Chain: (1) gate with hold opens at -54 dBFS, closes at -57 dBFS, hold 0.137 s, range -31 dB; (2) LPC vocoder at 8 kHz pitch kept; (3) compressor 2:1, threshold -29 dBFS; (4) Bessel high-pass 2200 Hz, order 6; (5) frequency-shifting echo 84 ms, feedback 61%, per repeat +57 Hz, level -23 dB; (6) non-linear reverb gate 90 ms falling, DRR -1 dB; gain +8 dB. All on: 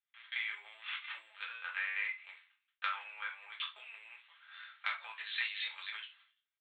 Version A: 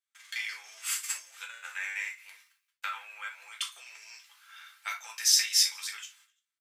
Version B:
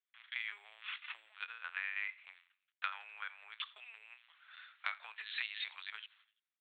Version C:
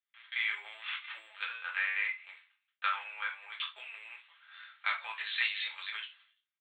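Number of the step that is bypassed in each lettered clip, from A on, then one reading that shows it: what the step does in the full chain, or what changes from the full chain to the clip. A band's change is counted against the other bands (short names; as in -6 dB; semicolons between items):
2, 4 kHz band +11.0 dB; 6, crest factor change +3.5 dB; 3, mean gain reduction 4.0 dB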